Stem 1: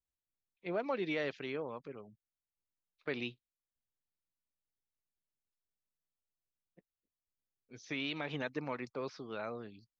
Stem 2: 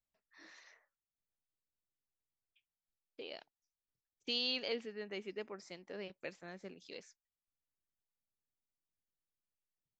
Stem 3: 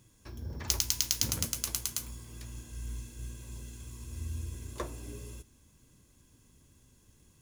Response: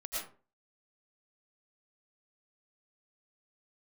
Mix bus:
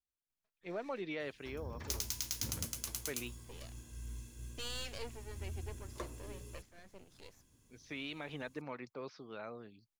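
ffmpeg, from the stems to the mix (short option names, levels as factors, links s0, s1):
-filter_complex "[0:a]volume=0.562[s0];[1:a]aeval=exprs='max(val(0),0)':c=same,adelay=300,volume=0.841[s1];[2:a]adelay=1200,volume=0.501[s2];[s0][s1][s2]amix=inputs=3:normalize=0,asoftclip=type=tanh:threshold=0.0631"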